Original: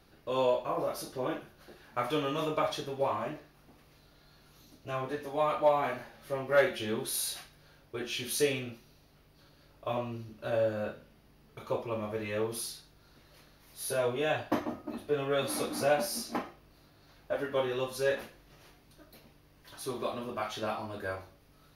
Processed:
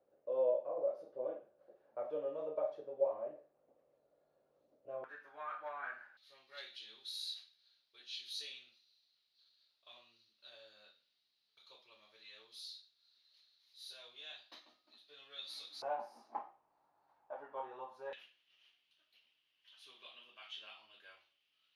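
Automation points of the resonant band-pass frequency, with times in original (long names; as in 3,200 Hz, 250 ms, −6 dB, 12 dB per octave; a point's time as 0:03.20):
resonant band-pass, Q 6.6
550 Hz
from 0:05.04 1,500 Hz
from 0:06.17 4,000 Hz
from 0:15.82 870 Hz
from 0:18.13 3,000 Hz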